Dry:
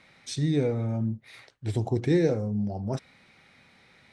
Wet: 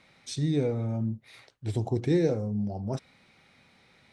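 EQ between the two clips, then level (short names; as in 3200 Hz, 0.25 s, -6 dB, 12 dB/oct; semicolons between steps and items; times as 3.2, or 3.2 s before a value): bell 1800 Hz -3.5 dB 0.73 oct; -1.5 dB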